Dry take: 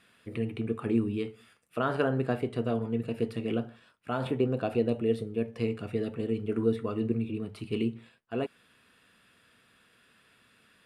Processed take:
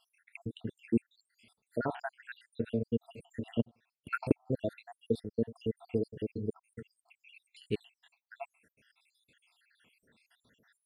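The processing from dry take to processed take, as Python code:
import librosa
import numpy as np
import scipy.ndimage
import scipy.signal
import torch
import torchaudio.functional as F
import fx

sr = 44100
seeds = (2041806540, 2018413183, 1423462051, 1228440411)

y = fx.spec_dropout(x, sr, seeds[0], share_pct=81)
y = fx.peak_eq(y, sr, hz=1200.0, db=-12.5, octaves=0.28)
y = fx.transient(y, sr, attack_db=12, sustain_db=-11, at=(3.59, 4.46), fade=0.02)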